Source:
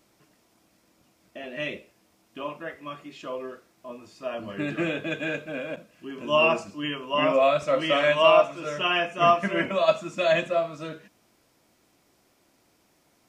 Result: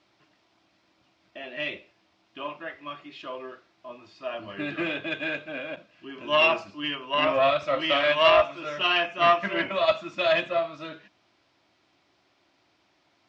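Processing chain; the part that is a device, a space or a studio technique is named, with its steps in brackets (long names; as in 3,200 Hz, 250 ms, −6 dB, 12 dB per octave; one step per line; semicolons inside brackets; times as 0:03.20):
guitar amplifier (tube saturation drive 11 dB, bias 0.55; bass and treble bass −2 dB, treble +10 dB; loudspeaker in its box 78–3,900 Hz, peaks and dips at 160 Hz −6 dB, 230 Hz −8 dB, 470 Hz −9 dB)
level +3 dB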